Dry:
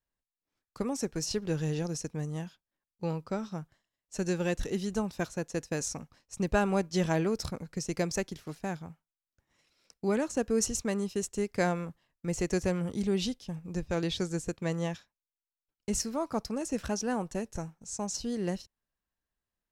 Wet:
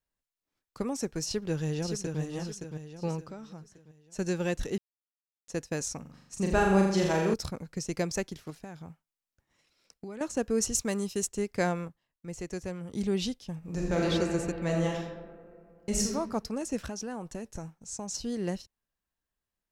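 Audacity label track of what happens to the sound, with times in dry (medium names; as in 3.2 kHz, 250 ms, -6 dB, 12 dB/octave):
1.250000	2.200000	echo throw 570 ms, feedback 40%, level -5.5 dB
3.280000	4.190000	compression 2:1, threshold -46 dBFS
4.780000	5.480000	mute
6.010000	7.340000	flutter echo walls apart 7.1 m, dies away in 0.81 s
8.500000	10.210000	compression 10:1, threshold -37 dBFS
10.720000	11.270000	treble shelf 4.9 kHz +8 dB
11.880000	12.930000	gain -7.5 dB
13.580000	14.080000	reverb throw, RT60 2.6 s, DRR -5 dB
14.630000	16.120000	reverb throw, RT60 0.93 s, DRR -1.5 dB
16.770000	18.110000	compression 4:1, threshold -33 dBFS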